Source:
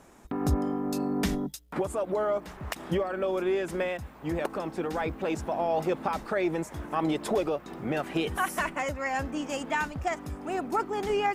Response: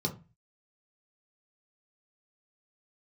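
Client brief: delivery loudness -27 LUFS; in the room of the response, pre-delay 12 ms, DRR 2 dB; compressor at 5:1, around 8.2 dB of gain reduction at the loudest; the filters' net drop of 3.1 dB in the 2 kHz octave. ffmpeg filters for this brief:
-filter_complex "[0:a]equalizer=f=2000:t=o:g=-4,acompressor=threshold=0.0316:ratio=5,asplit=2[s0][s1];[1:a]atrim=start_sample=2205,adelay=12[s2];[s1][s2]afir=irnorm=-1:irlink=0,volume=0.473[s3];[s0][s3]amix=inputs=2:normalize=0,volume=1.19"

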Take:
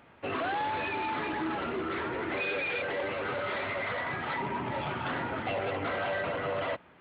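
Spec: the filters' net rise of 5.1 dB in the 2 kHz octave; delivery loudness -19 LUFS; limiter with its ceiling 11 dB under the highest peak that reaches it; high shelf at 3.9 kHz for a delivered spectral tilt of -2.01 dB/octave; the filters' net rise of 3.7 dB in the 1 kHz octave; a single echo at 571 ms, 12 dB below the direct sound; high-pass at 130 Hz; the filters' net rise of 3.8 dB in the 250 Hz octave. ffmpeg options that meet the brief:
-af "highpass=130,equalizer=f=250:t=o:g=5,equalizer=f=1000:t=o:g=3,equalizer=f=2000:t=o:g=3.5,highshelf=f=3900:g=7.5,alimiter=level_in=1.58:limit=0.0631:level=0:latency=1,volume=0.631,aecho=1:1:571:0.251,volume=6.31"

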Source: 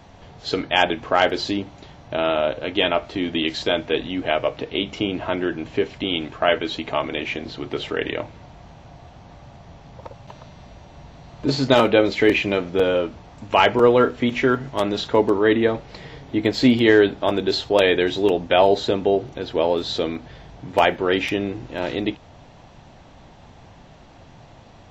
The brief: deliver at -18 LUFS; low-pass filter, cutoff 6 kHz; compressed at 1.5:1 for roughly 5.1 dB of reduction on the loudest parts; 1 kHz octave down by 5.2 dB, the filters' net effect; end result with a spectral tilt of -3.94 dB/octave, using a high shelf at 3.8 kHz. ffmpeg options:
-af "lowpass=6000,equalizer=f=1000:t=o:g=-7,highshelf=f=3800:g=-7,acompressor=threshold=0.0562:ratio=1.5,volume=2.51"

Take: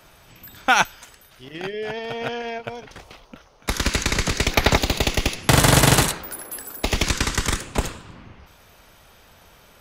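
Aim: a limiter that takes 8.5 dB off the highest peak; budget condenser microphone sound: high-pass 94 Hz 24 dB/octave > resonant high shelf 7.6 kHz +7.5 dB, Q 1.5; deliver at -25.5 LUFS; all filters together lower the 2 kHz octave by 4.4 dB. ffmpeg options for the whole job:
-af "equalizer=f=2000:t=o:g=-5.5,alimiter=limit=0.266:level=0:latency=1,highpass=f=94:w=0.5412,highpass=f=94:w=1.3066,highshelf=f=7600:t=q:w=1.5:g=7.5,volume=0.841"

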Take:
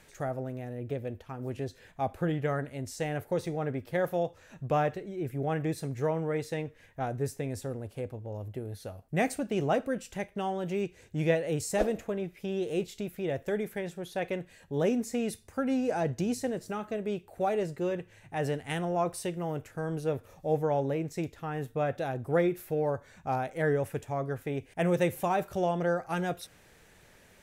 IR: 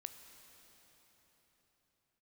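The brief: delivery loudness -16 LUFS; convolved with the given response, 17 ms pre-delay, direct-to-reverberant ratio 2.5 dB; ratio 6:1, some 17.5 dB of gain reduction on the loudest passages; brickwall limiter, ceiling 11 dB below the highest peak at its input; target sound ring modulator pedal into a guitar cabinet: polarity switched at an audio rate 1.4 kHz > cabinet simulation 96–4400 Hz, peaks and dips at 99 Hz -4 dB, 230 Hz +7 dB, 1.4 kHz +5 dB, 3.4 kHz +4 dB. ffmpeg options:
-filter_complex "[0:a]acompressor=threshold=0.00891:ratio=6,alimiter=level_in=6.68:limit=0.0631:level=0:latency=1,volume=0.15,asplit=2[s0][s1];[1:a]atrim=start_sample=2205,adelay=17[s2];[s1][s2]afir=irnorm=-1:irlink=0,volume=1.26[s3];[s0][s3]amix=inputs=2:normalize=0,aeval=exprs='val(0)*sgn(sin(2*PI*1400*n/s))':c=same,highpass=96,equalizer=f=99:t=q:w=4:g=-4,equalizer=f=230:t=q:w=4:g=7,equalizer=f=1400:t=q:w=4:g=5,equalizer=f=3400:t=q:w=4:g=4,lowpass=f=4400:w=0.5412,lowpass=f=4400:w=1.3066,volume=28.2"

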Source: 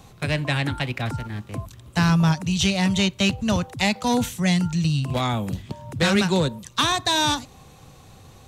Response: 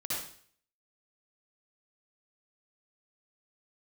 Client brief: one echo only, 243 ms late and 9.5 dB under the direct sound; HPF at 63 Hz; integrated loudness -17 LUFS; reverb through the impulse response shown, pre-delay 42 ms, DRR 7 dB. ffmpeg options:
-filter_complex "[0:a]highpass=63,aecho=1:1:243:0.335,asplit=2[s0][s1];[1:a]atrim=start_sample=2205,adelay=42[s2];[s1][s2]afir=irnorm=-1:irlink=0,volume=0.282[s3];[s0][s3]amix=inputs=2:normalize=0,volume=1.68"

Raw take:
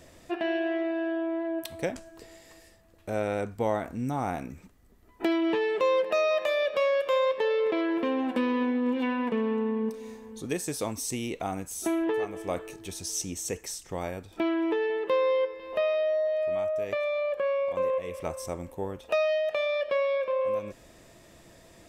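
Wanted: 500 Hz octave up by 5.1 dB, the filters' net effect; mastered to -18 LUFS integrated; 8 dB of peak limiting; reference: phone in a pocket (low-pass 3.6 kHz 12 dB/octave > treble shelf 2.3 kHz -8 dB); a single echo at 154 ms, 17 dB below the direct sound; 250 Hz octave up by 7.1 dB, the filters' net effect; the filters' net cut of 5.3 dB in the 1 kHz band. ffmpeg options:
-af "equalizer=f=250:t=o:g=7,equalizer=f=500:t=o:g=7.5,equalizer=f=1000:t=o:g=-9,alimiter=limit=0.119:level=0:latency=1,lowpass=3600,highshelf=f=2300:g=-8,aecho=1:1:154:0.141,volume=2.66"

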